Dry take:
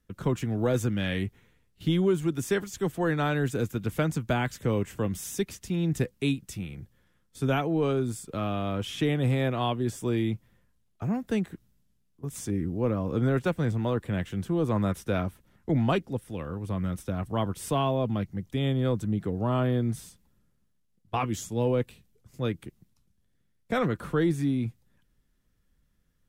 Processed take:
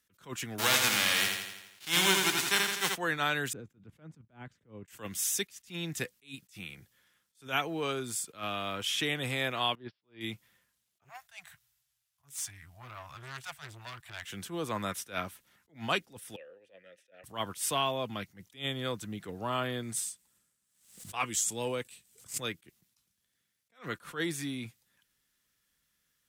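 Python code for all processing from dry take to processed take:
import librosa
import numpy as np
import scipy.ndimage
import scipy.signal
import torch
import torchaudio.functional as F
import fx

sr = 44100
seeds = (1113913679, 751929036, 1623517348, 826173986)

y = fx.envelope_flatten(x, sr, power=0.3, at=(0.58, 2.94), fade=0.02)
y = fx.lowpass(y, sr, hz=3200.0, slope=6, at=(0.58, 2.94), fade=0.02)
y = fx.echo_feedback(y, sr, ms=83, feedback_pct=56, wet_db=-4.5, at=(0.58, 2.94), fade=0.02)
y = fx.chain(y, sr, fx.bandpass_q(hz=120.0, q=0.51),
    fx.level_steps(step_db=11), at=(3.53, 4.88))
y = fx.chain(y, sr, fx.lowpass(hz=1500.0, slope=6),
    fx.resample_bad(factor=4, down='none', up='filtered'),
    fx.upward_expand(threshold_db=-48.0, expansion=2.5), at=(9.75, 10.21))
y = fx.chain(y, sr, fx.cheby1_bandstop(low_hz=140.0, high_hz=660.0, order=4),
    fx.tube_stage(drive_db=34.0, bias=0.35), at=(11.04, 14.25))
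y = fx.chain(y, sr, fx.vowel_filter(vowel='e'),
    fx.low_shelf(hz=120.0, db=-6.5), at=(16.36, 17.24))
y = fx.chain(y, sr, fx.peak_eq(hz=8200.0, db=10.0, octaves=0.5),
    fx.tremolo_shape(shape='triangle', hz=2.3, depth_pct=40),
    fx.pre_swell(db_per_s=97.0), at=(19.83, 22.48))
y = fx.highpass(y, sr, hz=120.0, slope=6)
y = fx.tilt_shelf(y, sr, db=-9.5, hz=930.0)
y = fx.attack_slew(y, sr, db_per_s=220.0)
y = y * librosa.db_to_amplitude(-2.0)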